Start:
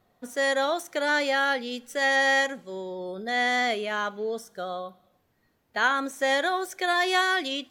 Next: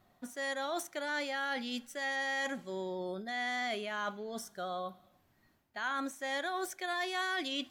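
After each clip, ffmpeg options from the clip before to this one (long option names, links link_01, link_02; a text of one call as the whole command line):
ffmpeg -i in.wav -af "areverse,acompressor=threshold=-33dB:ratio=6,areverse,equalizer=frequency=470:width=7.2:gain=-14" out.wav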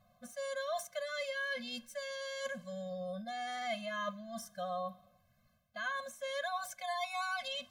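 ffmpeg -i in.wav -af "afftfilt=real='re*eq(mod(floor(b*sr/1024/250),2),0)':imag='im*eq(mod(floor(b*sr/1024/250),2),0)':win_size=1024:overlap=0.75,volume=1dB" out.wav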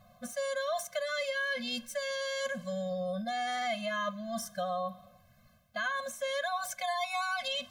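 ffmpeg -i in.wav -af "acompressor=threshold=-41dB:ratio=2.5,volume=9dB" out.wav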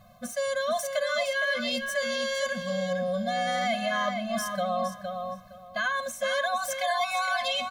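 ffmpeg -i in.wav -filter_complex "[0:a]asplit=2[link_01][link_02];[link_02]adelay=463,lowpass=frequency=4600:poles=1,volume=-5.5dB,asplit=2[link_03][link_04];[link_04]adelay=463,lowpass=frequency=4600:poles=1,volume=0.22,asplit=2[link_05][link_06];[link_06]adelay=463,lowpass=frequency=4600:poles=1,volume=0.22[link_07];[link_01][link_03][link_05][link_07]amix=inputs=4:normalize=0,volume=5dB" out.wav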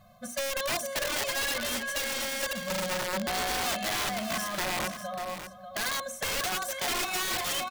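ffmpeg -i in.wav -af "aeval=exprs='(mod(14.1*val(0)+1,2)-1)/14.1':channel_layout=same,bandreject=frequency=60:width_type=h:width=6,bandreject=frequency=120:width_type=h:width=6,bandreject=frequency=180:width_type=h:width=6,bandreject=frequency=240:width_type=h:width=6,bandreject=frequency=300:width_type=h:width=6,bandreject=frequency=360:width_type=h:width=6,bandreject=frequency=420:width_type=h:width=6,bandreject=frequency=480:width_type=h:width=6,bandreject=frequency=540:width_type=h:width=6,aecho=1:1:592:0.316,volume=-2dB" out.wav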